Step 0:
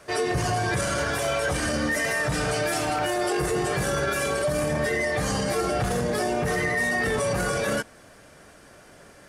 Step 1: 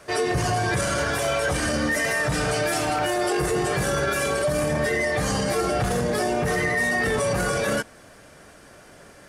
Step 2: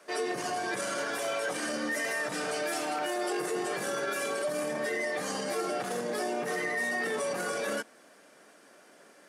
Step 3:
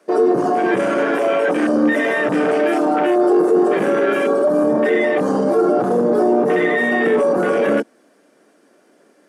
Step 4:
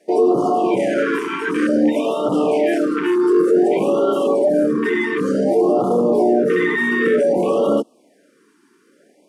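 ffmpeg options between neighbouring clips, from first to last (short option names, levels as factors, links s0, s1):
-af "acontrast=78,volume=0.562"
-af "highpass=f=220:w=0.5412,highpass=f=220:w=1.3066,volume=0.398"
-filter_complex "[0:a]afwtdn=0.02,equalizer=f=300:t=o:w=1.9:g=11,asplit=2[s0][s1];[s1]alimiter=level_in=1.33:limit=0.0631:level=0:latency=1:release=13,volume=0.75,volume=0.944[s2];[s0][s2]amix=inputs=2:normalize=0,volume=2.37"
-af "afftfilt=real='re*(1-between(b*sr/1024,600*pow(2000/600,0.5+0.5*sin(2*PI*0.55*pts/sr))/1.41,600*pow(2000/600,0.5+0.5*sin(2*PI*0.55*pts/sr))*1.41))':imag='im*(1-between(b*sr/1024,600*pow(2000/600,0.5+0.5*sin(2*PI*0.55*pts/sr))/1.41,600*pow(2000/600,0.5+0.5*sin(2*PI*0.55*pts/sr))*1.41))':win_size=1024:overlap=0.75"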